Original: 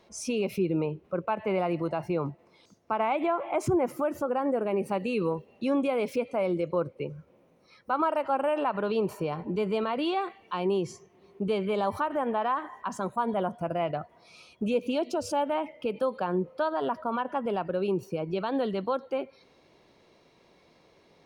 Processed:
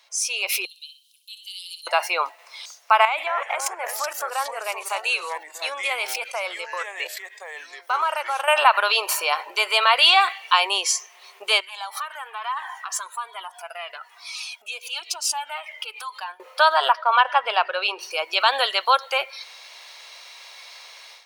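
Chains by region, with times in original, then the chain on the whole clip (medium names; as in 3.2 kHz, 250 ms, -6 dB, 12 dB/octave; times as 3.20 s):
0.65–1.87 s: rippled Chebyshev high-pass 3 kHz, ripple 6 dB + flutter echo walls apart 10.5 m, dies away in 0.37 s
3.05–8.48 s: level held to a coarse grid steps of 18 dB + ever faster or slower copies 216 ms, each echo -4 st, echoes 2, each echo -6 dB
11.60–16.40 s: peaking EQ 560 Hz -12 dB 0.39 oct + compression 2.5:1, threshold -42 dBFS + Shepard-style flanger falling 1.1 Hz
16.92–18.11 s: Savitzky-Golay filter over 15 samples + hum notches 50/100/150/200/250/300/350/400 Hz + three bands expanded up and down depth 40%
whole clip: level rider gain up to 15 dB; Bessel high-pass 1.1 kHz, order 6; treble shelf 2 kHz +11 dB; trim +2 dB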